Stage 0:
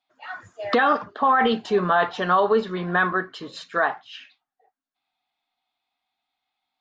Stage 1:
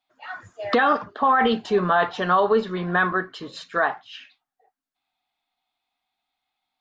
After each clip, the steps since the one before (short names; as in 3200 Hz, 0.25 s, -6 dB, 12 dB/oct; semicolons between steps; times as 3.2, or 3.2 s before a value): low shelf 79 Hz +6.5 dB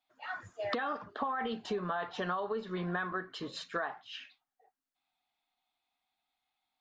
compressor 12:1, threshold -27 dBFS, peak gain reduction 13 dB; gain -4.5 dB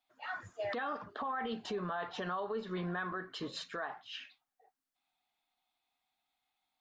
limiter -29.5 dBFS, peak gain reduction 10 dB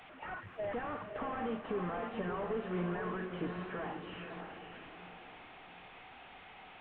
delta modulation 16 kbps, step -49 dBFS; diffused feedback echo 0.551 s, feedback 43%, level -5.5 dB; gain +1.5 dB